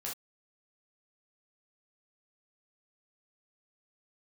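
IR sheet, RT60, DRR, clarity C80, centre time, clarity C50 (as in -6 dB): no single decay rate, -4.5 dB, 22.0 dB, 28 ms, 5.5 dB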